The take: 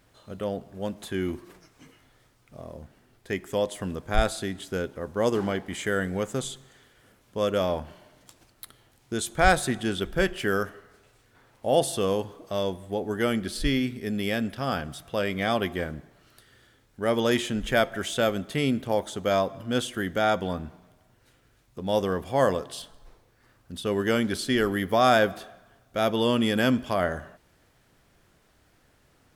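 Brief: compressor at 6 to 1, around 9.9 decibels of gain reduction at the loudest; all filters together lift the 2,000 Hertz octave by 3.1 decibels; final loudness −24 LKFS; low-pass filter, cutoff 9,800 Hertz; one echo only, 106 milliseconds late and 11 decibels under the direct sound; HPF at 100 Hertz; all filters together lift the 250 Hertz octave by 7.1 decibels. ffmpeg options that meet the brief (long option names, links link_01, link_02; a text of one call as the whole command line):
ffmpeg -i in.wav -af "highpass=100,lowpass=9800,equalizer=frequency=250:width_type=o:gain=8.5,equalizer=frequency=2000:width_type=o:gain=4,acompressor=threshold=-23dB:ratio=6,aecho=1:1:106:0.282,volume=5dB" out.wav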